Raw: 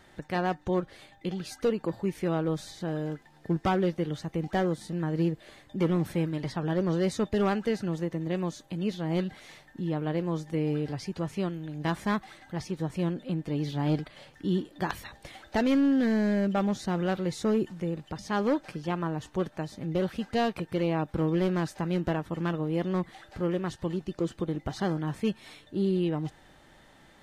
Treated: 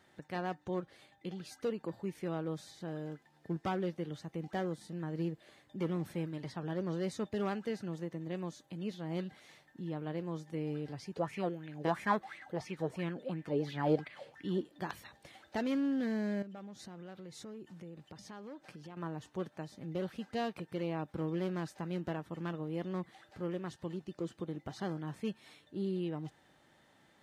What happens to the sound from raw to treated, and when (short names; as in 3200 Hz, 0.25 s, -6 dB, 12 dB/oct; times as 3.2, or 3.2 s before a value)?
11.16–14.61 LFO bell 2.9 Hz 430–2400 Hz +17 dB
16.42–18.97 compressor, threshold -36 dBFS
whole clip: HPF 95 Hz; gain -9 dB